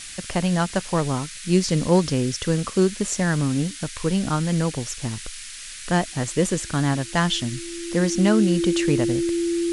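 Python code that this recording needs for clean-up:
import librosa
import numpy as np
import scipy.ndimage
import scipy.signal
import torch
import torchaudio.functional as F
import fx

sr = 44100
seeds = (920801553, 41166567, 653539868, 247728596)

y = fx.notch(x, sr, hz=340.0, q=30.0)
y = fx.noise_reduce(y, sr, print_start_s=5.35, print_end_s=5.85, reduce_db=29.0)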